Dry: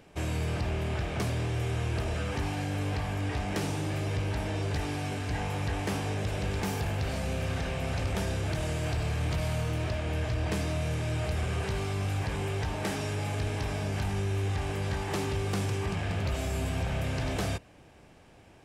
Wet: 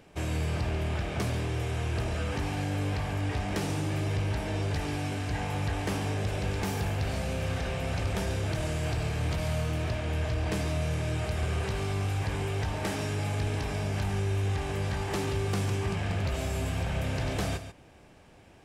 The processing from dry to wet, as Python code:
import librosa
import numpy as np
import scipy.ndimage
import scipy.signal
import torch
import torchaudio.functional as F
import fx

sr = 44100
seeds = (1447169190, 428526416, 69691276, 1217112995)

y = x + 10.0 ** (-11.0 / 20.0) * np.pad(x, (int(140 * sr / 1000.0), 0))[:len(x)]